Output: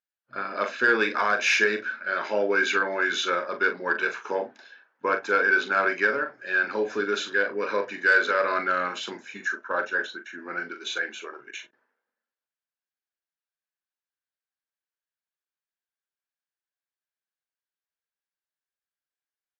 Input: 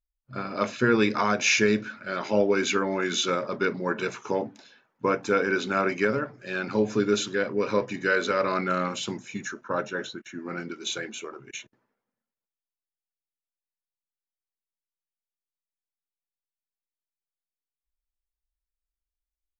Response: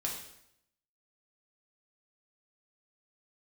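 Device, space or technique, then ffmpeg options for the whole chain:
intercom: -filter_complex "[0:a]highpass=400,lowpass=4800,equalizer=frequency=1600:width_type=o:width=0.29:gain=11,asoftclip=type=tanh:threshold=-10dB,asplit=2[link_01][link_02];[link_02]adelay=40,volume=-9dB[link_03];[link_01][link_03]amix=inputs=2:normalize=0"

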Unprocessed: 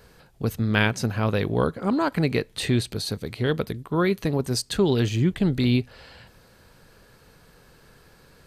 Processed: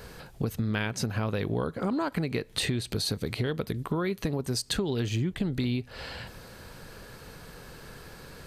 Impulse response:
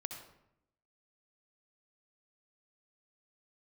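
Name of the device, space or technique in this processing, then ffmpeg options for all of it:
serial compression, peaks first: -af "acompressor=threshold=-29dB:ratio=4,acompressor=threshold=-37dB:ratio=2,volume=7.5dB"

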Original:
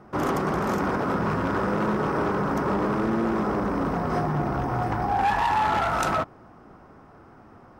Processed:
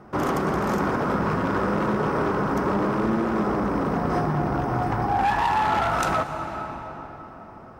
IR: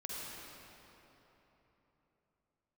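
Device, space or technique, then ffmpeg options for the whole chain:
ducked reverb: -filter_complex "[0:a]asplit=3[link_01][link_02][link_03];[1:a]atrim=start_sample=2205[link_04];[link_02][link_04]afir=irnorm=-1:irlink=0[link_05];[link_03]apad=whole_len=343595[link_06];[link_05][link_06]sidechaincompress=threshold=-26dB:ratio=8:attack=30:release=700,volume=-1.5dB[link_07];[link_01][link_07]amix=inputs=2:normalize=0,volume=-1dB"

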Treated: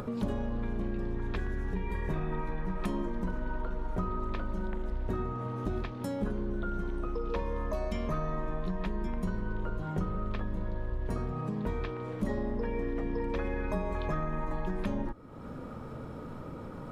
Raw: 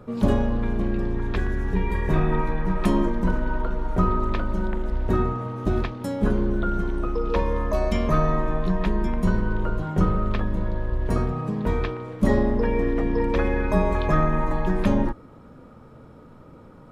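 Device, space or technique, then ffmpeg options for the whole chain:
upward and downward compression: -af "acompressor=mode=upward:threshold=-24dB:ratio=2.5,acompressor=threshold=-23dB:ratio=4,volume=-6dB"

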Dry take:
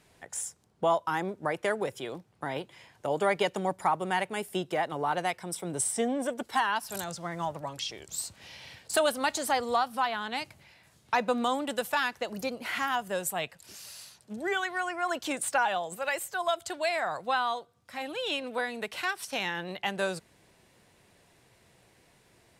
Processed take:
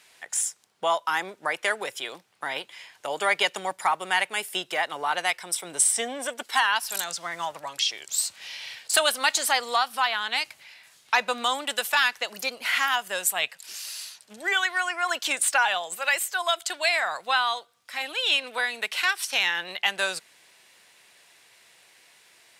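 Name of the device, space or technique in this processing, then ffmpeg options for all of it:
filter by subtraction: -filter_complex "[0:a]asplit=2[link_01][link_02];[link_02]lowpass=2600,volume=-1[link_03];[link_01][link_03]amix=inputs=2:normalize=0,volume=8.5dB"

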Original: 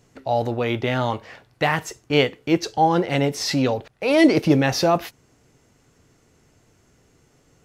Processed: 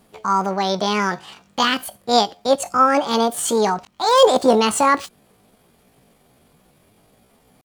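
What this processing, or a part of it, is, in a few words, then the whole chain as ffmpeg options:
chipmunk voice: -af "asetrate=72056,aresample=44100,atempo=0.612027,volume=2.5dB"

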